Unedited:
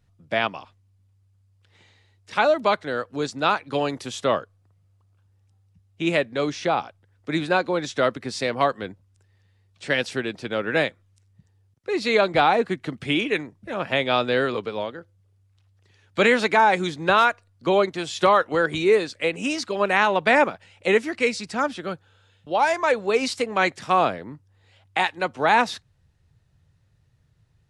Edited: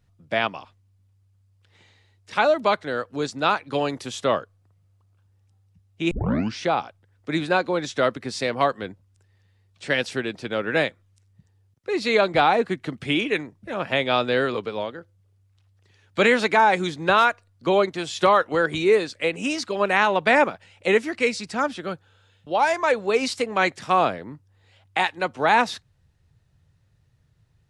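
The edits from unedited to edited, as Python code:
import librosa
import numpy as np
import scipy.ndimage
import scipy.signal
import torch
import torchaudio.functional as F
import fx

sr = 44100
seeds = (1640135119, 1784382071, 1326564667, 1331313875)

y = fx.edit(x, sr, fx.tape_start(start_s=6.11, length_s=0.49), tone=tone)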